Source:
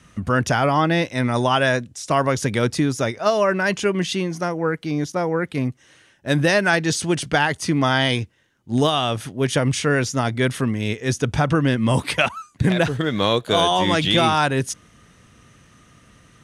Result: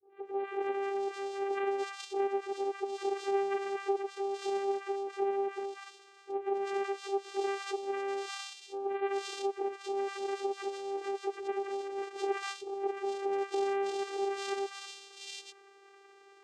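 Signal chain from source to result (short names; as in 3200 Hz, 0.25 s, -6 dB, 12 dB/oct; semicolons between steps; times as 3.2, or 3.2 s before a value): spectral delay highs late, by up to 0.781 s; dynamic EQ 1700 Hz, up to -7 dB, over -38 dBFS, Q 1; compressor 12:1, threshold -30 dBFS, peak gain reduction 15.5 dB; vocoder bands 4, saw 395 Hz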